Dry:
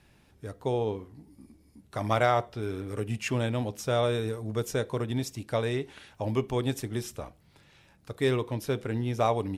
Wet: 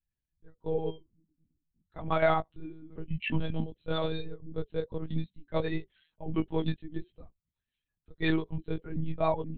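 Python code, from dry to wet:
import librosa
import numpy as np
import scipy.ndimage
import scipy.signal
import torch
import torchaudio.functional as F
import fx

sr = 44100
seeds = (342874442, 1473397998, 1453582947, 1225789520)

y = fx.bin_expand(x, sr, power=2.0)
y = fx.doubler(y, sr, ms=16.0, db=-2.0)
y = fx.lpc_monotone(y, sr, seeds[0], pitch_hz=160.0, order=10)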